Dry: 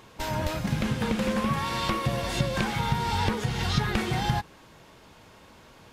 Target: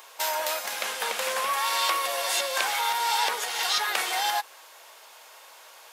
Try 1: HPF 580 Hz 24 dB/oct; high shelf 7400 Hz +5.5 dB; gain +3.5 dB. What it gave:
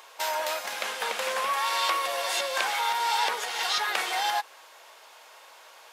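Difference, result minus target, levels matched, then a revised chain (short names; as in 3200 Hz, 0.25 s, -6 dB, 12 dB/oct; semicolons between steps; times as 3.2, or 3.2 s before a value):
8000 Hz band -3.0 dB
HPF 580 Hz 24 dB/oct; high shelf 7400 Hz +14.5 dB; gain +3.5 dB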